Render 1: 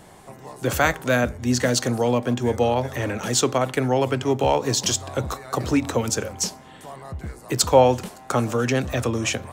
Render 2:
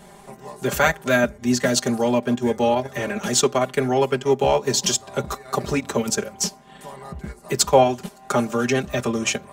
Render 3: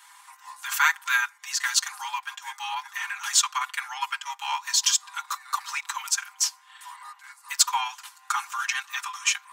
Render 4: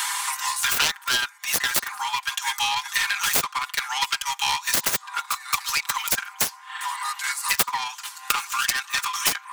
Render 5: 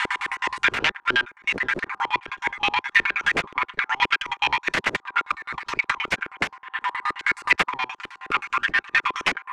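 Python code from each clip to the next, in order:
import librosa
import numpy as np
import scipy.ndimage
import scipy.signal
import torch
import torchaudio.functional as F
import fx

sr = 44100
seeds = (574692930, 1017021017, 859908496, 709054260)

y1 = x + 0.95 * np.pad(x, (int(5.0 * sr / 1000.0), 0))[:len(x)]
y1 = fx.transient(y1, sr, attack_db=0, sustain_db=-7)
y1 = y1 * 10.0 ** (-1.0 / 20.0)
y2 = scipy.signal.sosfilt(scipy.signal.butter(16, 890.0, 'highpass', fs=sr, output='sos'), y1)
y3 = fx.self_delay(y2, sr, depth_ms=0.61)
y3 = fx.band_squash(y3, sr, depth_pct=100)
y3 = y3 * 10.0 ** (3.5 / 20.0)
y4 = fx.peak_eq(y3, sr, hz=7900.0, db=3.5, octaves=1.1)
y4 = fx.filter_lfo_lowpass(y4, sr, shape='square', hz=9.5, low_hz=370.0, high_hz=2200.0, q=2.2)
y4 = y4 * 10.0 ** (2.0 / 20.0)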